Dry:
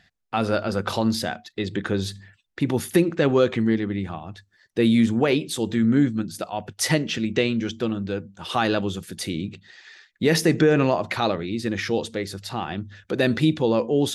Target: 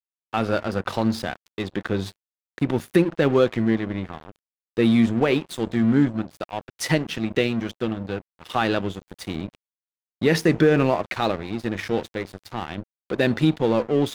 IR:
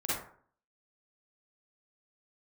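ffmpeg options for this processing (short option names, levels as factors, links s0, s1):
-af "aeval=exprs='sgn(val(0))*max(abs(val(0))-0.0211,0)':c=same,bass=f=250:g=0,treble=f=4000:g=-6,volume=1.19"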